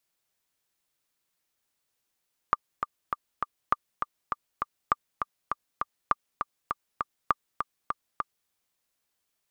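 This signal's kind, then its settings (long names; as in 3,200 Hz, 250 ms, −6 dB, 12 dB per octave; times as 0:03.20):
click track 201 BPM, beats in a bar 4, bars 5, 1,190 Hz, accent 6.5 dB −8 dBFS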